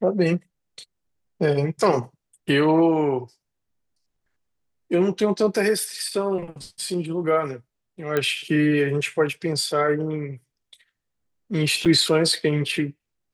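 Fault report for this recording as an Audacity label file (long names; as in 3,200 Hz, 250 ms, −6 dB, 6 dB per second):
8.170000	8.170000	click −10 dBFS
11.850000	11.860000	drop-out 6.3 ms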